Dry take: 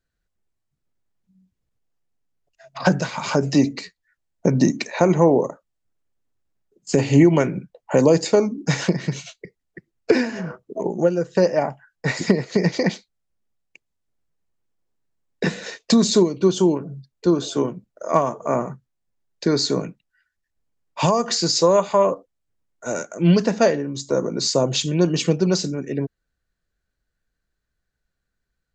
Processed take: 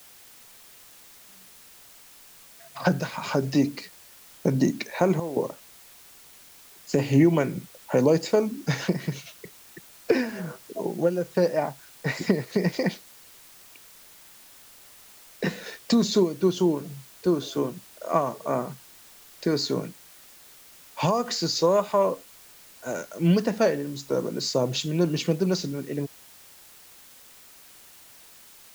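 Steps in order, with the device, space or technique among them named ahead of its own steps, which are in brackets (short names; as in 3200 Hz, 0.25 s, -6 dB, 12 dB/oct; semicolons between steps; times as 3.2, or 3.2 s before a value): worn cassette (LPF 6100 Hz; wow and flutter; level dips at 5.2, 0.164 s -13 dB; white noise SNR 23 dB); gain -5 dB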